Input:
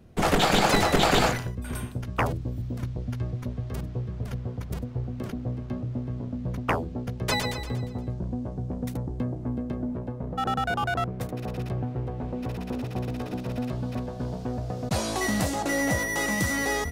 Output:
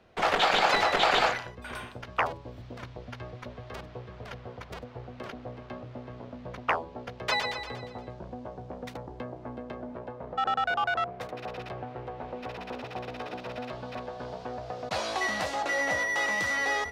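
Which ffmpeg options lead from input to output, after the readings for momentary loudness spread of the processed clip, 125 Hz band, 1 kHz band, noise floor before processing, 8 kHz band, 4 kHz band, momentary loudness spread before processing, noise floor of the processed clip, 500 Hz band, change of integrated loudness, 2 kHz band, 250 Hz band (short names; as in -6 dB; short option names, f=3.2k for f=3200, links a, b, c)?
19 LU, -14.5 dB, 0.0 dB, -37 dBFS, -8.5 dB, -1.0 dB, 12 LU, -47 dBFS, -3.0 dB, -1.5 dB, +1.0 dB, -12.5 dB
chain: -filter_complex "[0:a]acrossover=split=490 5000:gain=0.126 1 0.112[a][b][c];[a][b][c]amix=inputs=3:normalize=0,bandreject=f=140.5:t=h:w=4,bandreject=f=281:t=h:w=4,bandreject=f=421.5:t=h:w=4,bandreject=f=562:t=h:w=4,bandreject=f=702.5:t=h:w=4,bandreject=f=843:t=h:w=4,bandreject=f=983.5:t=h:w=4,bandreject=f=1.124k:t=h:w=4,asplit=2[d][e];[e]acompressor=threshold=-41dB:ratio=6,volume=-3dB[f];[d][f]amix=inputs=2:normalize=0"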